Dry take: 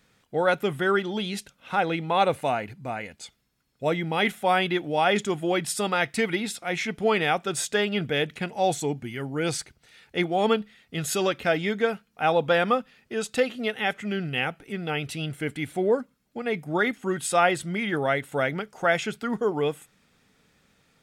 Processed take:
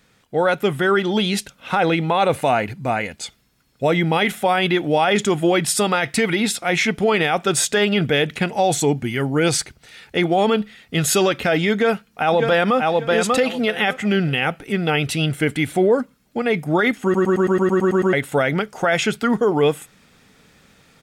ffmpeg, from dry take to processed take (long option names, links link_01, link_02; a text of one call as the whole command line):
ffmpeg -i in.wav -filter_complex "[0:a]asplit=2[link_01][link_02];[link_02]afade=type=in:start_time=11.73:duration=0.01,afade=type=out:start_time=12.78:duration=0.01,aecho=0:1:590|1180|1770:0.446684|0.0893367|0.0178673[link_03];[link_01][link_03]amix=inputs=2:normalize=0,asplit=11[link_04][link_05][link_06][link_07][link_08][link_09][link_10][link_11][link_12][link_13][link_14];[link_04]atrim=end=17.142[link_15];[link_05]atrim=start=17.028:end=17.142[link_16];[link_06]atrim=start=17.028:end=17.142[link_17];[link_07]atrim=start=17.028:end=17.142[link_18];[link_08]atrim=start=17.028:end=17.142[link_19];[link_09]atrim=start=17.028:end=17.142[link_20];[link_10]atrim=start=17.028:end=17.142[link_21];[link_11]atrim=start=17.028:end=17.142[link_22];[link_12]atrim=start=17.028:end=17.142[link_23];[link_13]atrim=start=17.028:end=17.142[link_24];[link_14]atrim=start=18.128[link_25];[link_15][link_16]acrossfade=duration=0.004:curve1=hsin:curve2=hsin[link_26];[link_26][link_17]acrossfade=duration=0.004:curve1=hsin:curve2=hsin[link_27];[link_27][link_18]acrossfade=duration=0.004:curve1=hsin:curve2=hsin[link_28];[link_28][link_19]acrossfade=duration=0.004:curve1=hsin:curve2=hsin[link_29];[link_29][link_20]acrossfade=duration=0.004:curve1=hsin:curve2=hsin[link_30];[link_30][link_21]acrossfade=duration=0.004:curve1=hsin:curve2=hsin[link_31];[link_31][link_22]acrossfade=duration=0.004:curve1=hsin:curve2=hsin[link_32];[link_32][link_23]acrossfade=duration=0.004:curve1=hsin:curve2=hsin[link_33];[link_33][link_24]acrossfade=duration=0.004:curve1=hsin:curve2=hsin[link_34];[link_34][link_25]acrossfade=duration=0.004:curve1=hsin:curve2=hsin,dynaudnorm=framelen=590:gausssize=3:maxgain=5.5dB,alimiter=level_in=13dB:limit=-1dB:release=50:level=0:latency=1,volume=-7.5dB" out.wav